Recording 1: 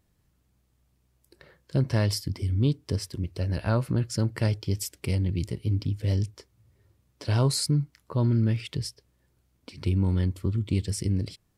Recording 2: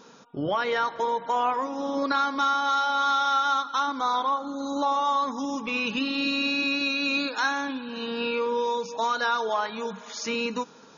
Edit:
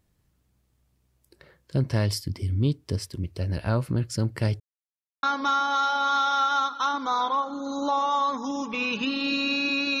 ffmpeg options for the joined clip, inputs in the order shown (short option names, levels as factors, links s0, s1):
-filter_complex "[0:a]apad=whole_dur=10,atrim=end=10,asplit=2[s0][s1];[s0]atrim=end=4.6,asetpts=PTS-STARTPTS,afade=t=out:st=4.596:d=0.004:c=hsin[s2];[s1]atrim=start=4.6:end=5.23,asetpts=PTS-STARTPTS,volume=0[s3];[1:a]atrim=start=2.17:end=6.94,asetpts=PTS-STARTPTS,afade=t=in:d=0.004:c=hsin[s4];[s2][s3][s4]concat=n=3:v=0:a=1"